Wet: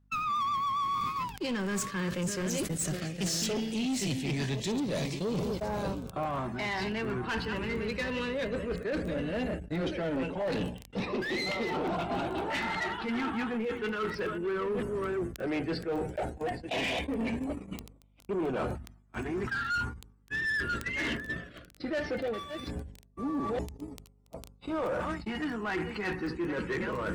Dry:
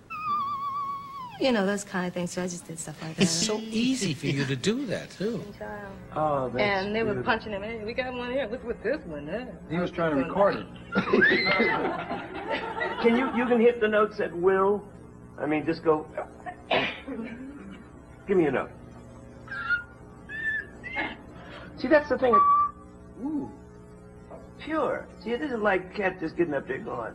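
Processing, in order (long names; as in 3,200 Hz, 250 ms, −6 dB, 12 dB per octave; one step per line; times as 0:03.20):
delay that plays each chunk backwards 674 ms, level −13 dB
noise gate −38 dBFS, range −41 dB
parametric band 71 Hz +4.5 dB 0.22 octaves
reversed playback
downward compressor 8 to 1, threshold −37 dBFS, peak gain reduction 22 dB
reversed playback
surface crackle 11 per second −47 dBFS
in parallel at −4.5 dB: hard clipping −39 dBFS, distortion −10 dB
on the sum: auto-filter notch saw up 0.16 Hz 470–2,000 Hz
mains hum 50 Hz, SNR 35 dB
soft clipping −35 dBFS, distortion −15 dB
level that may fall only so fast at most 100 dB per second
level +8.5 dB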